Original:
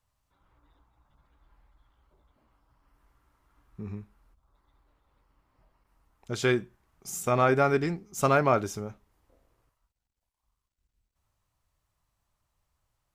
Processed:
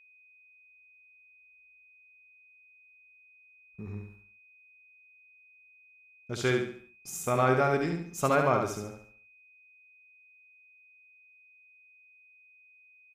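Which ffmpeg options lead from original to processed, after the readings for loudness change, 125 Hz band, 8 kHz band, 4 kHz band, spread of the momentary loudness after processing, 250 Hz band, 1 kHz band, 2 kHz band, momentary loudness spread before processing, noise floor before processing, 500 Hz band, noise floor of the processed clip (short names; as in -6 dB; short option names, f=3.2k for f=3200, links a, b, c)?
-2.0 dB, -1.5 dB, -1.5 dB, -1.5 dB, 19 LU, -2.0 dB, -1.5 dB, -1.5 dB, 19 LU, -83 dBFS, -2.0 dB, -60 dBFS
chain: -af "agate=range=-31dB:threshold=-55dB:ratio=16:detection=peak,aecho=1:1:70|140|210|280|350:0.562|0.219|0.0855|0.0334|0.013,aeval=exprs='val(0)+0.002*sin(2*PI*2500*n/s)':c=same,volume=-3dB"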